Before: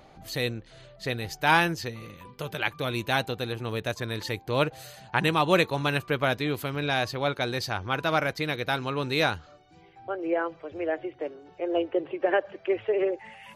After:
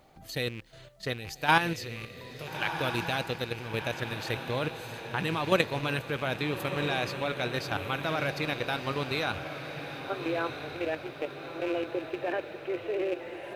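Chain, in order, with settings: rattle on loud lows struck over -41 dBFS, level -28 dBFS; level held to a coarse grid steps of 10 dB; on a send: echo that smears into a reverb 1338 ms, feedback 50%, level -8 dB; on the sum: bit crusher 12-bit

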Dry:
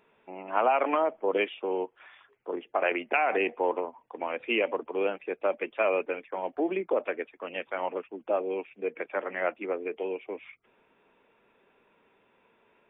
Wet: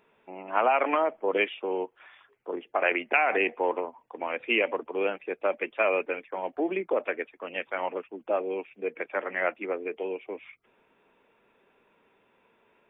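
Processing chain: dynamic bell 2 kHz, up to +5 dB, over -41 dBFS, Q 1.3

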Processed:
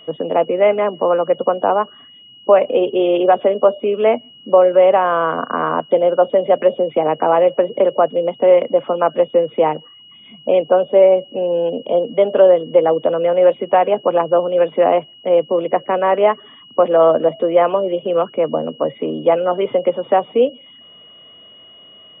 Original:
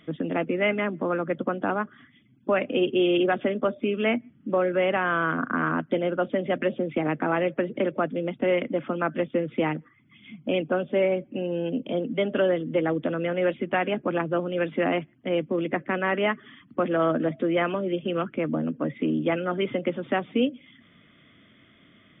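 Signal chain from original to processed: whistle 2.9 kHz -40 dBFS; high-order bell 680 Hz +15 dB; trim -1 dB

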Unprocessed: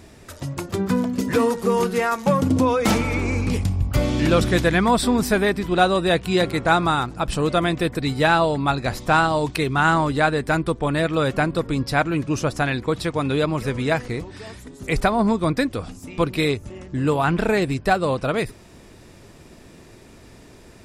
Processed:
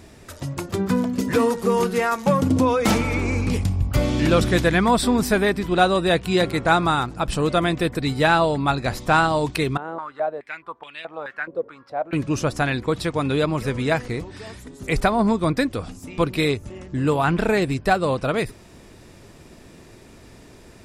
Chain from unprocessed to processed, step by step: 9.77–12.13 s: step-sequenced band-pass 4.7 Hz 490–2800 Hz

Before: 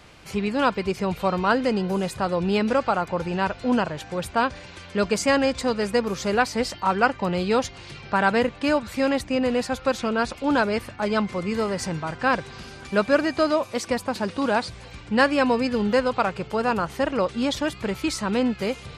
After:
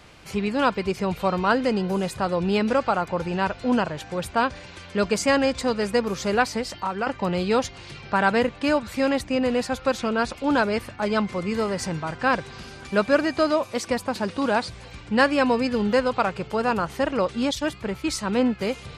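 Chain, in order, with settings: 6.57–7.07 s: compression 5:1, threshold -24 dBFS, peak gain reduction 10.5 dB; 17.51–18.61 s: three bands expanded up and down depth 70%

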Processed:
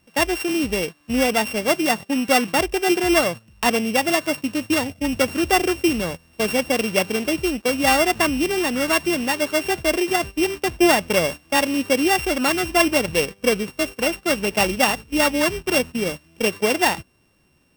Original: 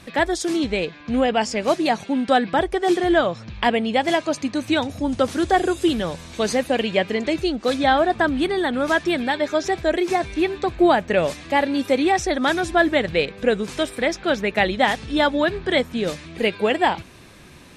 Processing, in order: sorted samples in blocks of 16 samples; gate -28 dBFS, range -16 dB

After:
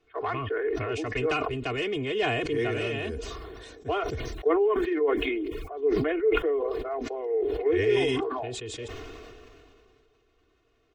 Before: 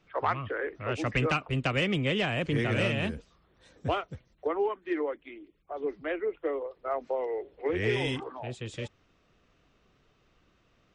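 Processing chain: peaking EQ 450 Hz +11.5 dB 0.31 oct; comb 2.8 ms, depth 88%; decay stretcher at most 23 dB/s; trim -6.5 dB

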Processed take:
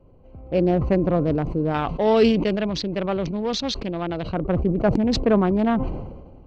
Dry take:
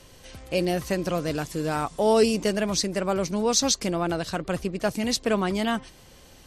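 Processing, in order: local Wiener filter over 25 samples; 1.74–4.34 s: peaking EQ 3.4 kHz +15 dB 1.7 oct; level rider gain up to 8.5 dB; tape spacing loss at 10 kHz 39 dB; decay stretcher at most 46 dB/s

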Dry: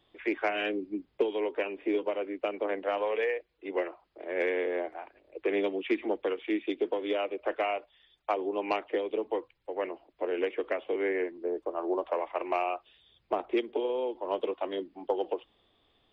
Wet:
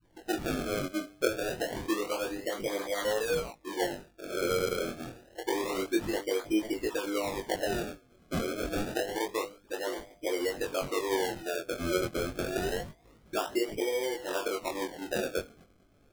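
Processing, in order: delay that grows with frequency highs late, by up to 493 ms; bass shelf 180 Hz +7.5 dB; in parallel at +2.5 dB: compression, threshold -40 dBFS, peak gain reduction 17.5 dB; on the sum: de-hum 99.79 Hz, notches 7; decimation with a swept rate 32×, swing 100% 0.27 Hz; chorus 0.3 Hz, delay 18.5 ms, depth 5.9 ms

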